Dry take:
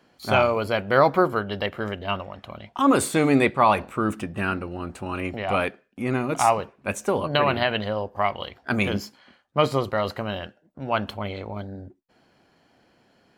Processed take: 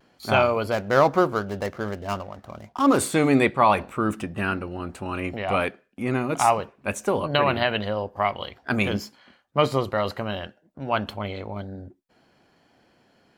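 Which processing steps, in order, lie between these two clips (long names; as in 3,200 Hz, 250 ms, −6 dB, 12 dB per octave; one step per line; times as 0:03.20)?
0:00.72–0:02.99: running median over 15 samples
pitch vibrato 0.49 Hz 20 cents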